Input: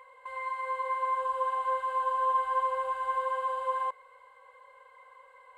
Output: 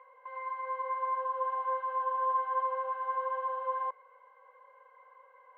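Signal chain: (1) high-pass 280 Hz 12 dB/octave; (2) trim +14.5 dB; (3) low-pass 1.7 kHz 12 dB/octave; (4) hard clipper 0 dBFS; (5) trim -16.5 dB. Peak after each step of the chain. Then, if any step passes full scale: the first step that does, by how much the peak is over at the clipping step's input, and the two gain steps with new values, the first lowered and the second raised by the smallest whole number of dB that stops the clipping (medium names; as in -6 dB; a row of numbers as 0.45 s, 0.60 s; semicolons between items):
-18.5 dBFS, -4.0 dBFS, -4.5 dBFS, -4.5 dBFS, -21.0 dBFS; nothing clips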